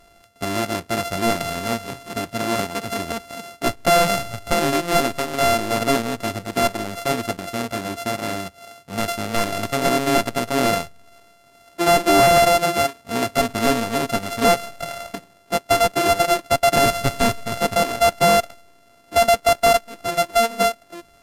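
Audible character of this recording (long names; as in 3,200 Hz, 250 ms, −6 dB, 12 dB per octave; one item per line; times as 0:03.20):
a buzz of ramps at a fixed pitch in blocks of 64 samples
AAC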